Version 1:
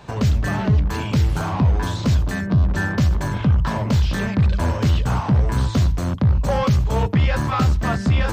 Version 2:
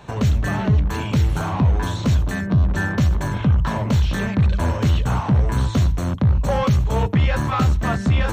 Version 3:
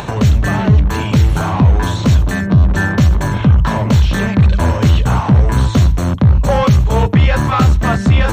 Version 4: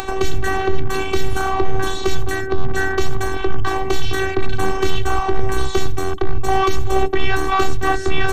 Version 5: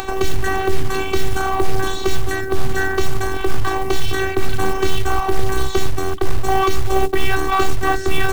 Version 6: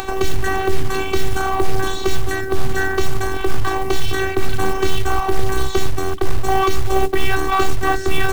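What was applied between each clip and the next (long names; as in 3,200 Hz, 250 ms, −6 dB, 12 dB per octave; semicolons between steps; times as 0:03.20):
notch filter 4,900 Hz, Q 6
upward compression, threshold −24 dBFS; level +7 dB
phases set to zero 382 Hz; level +1 dB
log-companded quantiser 6 bits
centre clipping without the shift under −41 dBFS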